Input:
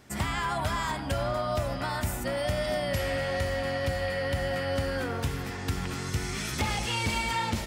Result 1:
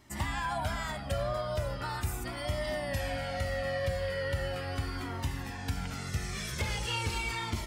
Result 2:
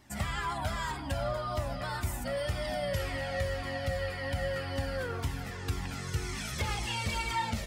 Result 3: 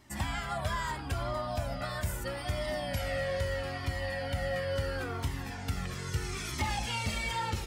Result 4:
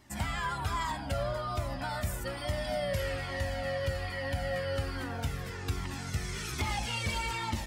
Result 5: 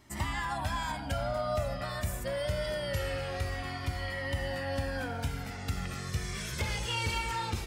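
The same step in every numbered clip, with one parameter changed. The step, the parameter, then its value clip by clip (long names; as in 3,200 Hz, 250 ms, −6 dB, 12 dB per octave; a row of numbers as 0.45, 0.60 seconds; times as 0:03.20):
flanger whose copies keep moving one way, speed: 0.39, 1.9, 0.76, 1.2, 0.24 Hertz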